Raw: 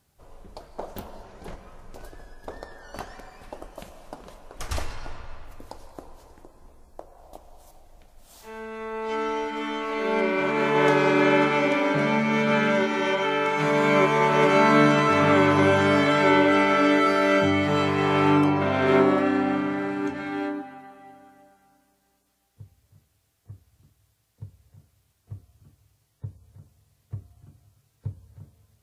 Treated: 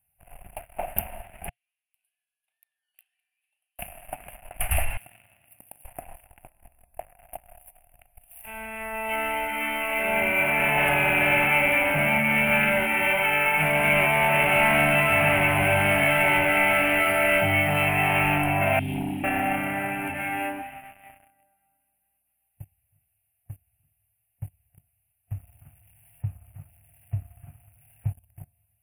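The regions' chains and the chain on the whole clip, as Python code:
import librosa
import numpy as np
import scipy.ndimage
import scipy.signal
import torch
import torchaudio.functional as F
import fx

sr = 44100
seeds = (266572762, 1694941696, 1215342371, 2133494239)

y = fx.chain(x, sr, fx.ladder_bandpass(hz=4400.0, resonance_pct=65),
    fx.room_flutter(wall_m=6.1, rt60_s=0.21), at=(1.49, 3.79))
y = fx.chain(y, sr, fx.highpass(hz=140.0, slope=24),
    fx.peak_eq(hz=1000.0, db=-14.5, octaves=2.5),
    fx.env_flatten(amount_pct=50), at=(4.97, 5.85))
y = fx.chain(y, sr, fx.cheby1_bandstop(low_hz=300.0, high_hz=3600.0, order=3),
    fx.air_absorb(metres=71.0), at=(18.79, 19.24))
y = fx.chain(y, sr, fx.zero_step(step_db=-42.5),
    fx.high_shelf(hz=3700.0, db=-7.0),
    fx.notch(hz=1200.0, q=11.0), at=(25.33, 28.07))
y = fx.leveller(y, sr, passes=3)
y = fx.curve_eq(y, sr, hz=(120.0, 450.0, 710.0, 1100.0, 2700.0, 3900.0, 6500.0, 9900.0), db=(0, -17, 5, -11, 9, -26, -28, 14))
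y = y * librosa.db_to_amplitude(-6.0)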